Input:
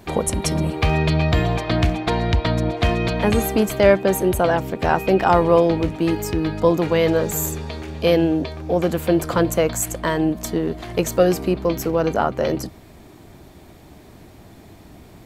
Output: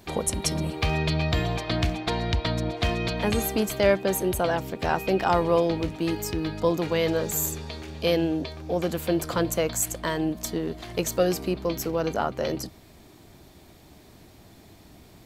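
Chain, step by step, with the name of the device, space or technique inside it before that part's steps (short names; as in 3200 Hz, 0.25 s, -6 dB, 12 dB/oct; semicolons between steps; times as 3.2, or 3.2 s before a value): presence and air boost (bell 4500 Hz +5.5 dB 1.5 oct; high shelf 10000 Hz +6.5 dB); gain -7 dB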